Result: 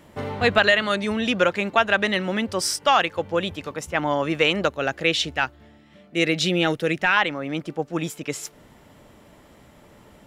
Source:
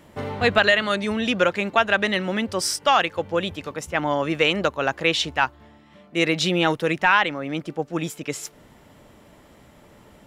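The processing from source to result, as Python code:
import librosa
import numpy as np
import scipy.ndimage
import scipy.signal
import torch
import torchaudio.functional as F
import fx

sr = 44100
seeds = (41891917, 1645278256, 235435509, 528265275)

y = fx.peak_eq(x, sr, hz=1000.0, db=-10.0, octaves=0.47, at=(4.68, 7.17))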